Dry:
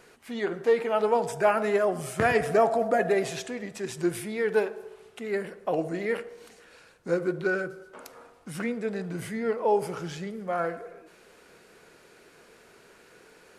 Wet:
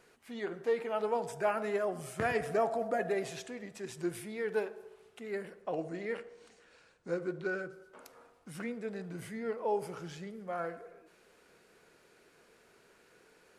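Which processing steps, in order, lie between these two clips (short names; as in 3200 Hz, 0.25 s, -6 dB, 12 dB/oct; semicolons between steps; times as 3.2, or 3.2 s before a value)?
5.62–7.73 LPF 9000 Hz 24 dB/oct; gain -8.5 dB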